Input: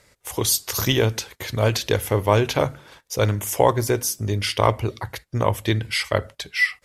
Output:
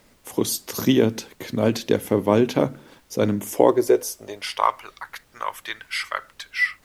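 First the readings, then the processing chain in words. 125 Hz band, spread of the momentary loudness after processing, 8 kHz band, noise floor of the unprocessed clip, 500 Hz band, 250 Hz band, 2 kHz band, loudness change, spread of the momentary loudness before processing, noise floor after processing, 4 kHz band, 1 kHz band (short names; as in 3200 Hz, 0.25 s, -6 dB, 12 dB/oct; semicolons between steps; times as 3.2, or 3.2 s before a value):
-8.5 dB, 13 LU, -6.0 dB, -64 dBFS, +1.0 dB, +5.0 dB, -2.5 dB, -0.5 dB, 10 LU, -58 dBFS, -5.5 dB, -1.0 dB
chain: low shelf 450 Hz +10 dB; high-pass sweep 230 Hz -> 1300 Hz, 3.43–4.85; added noise pink -53 dBFS; gain -6 dB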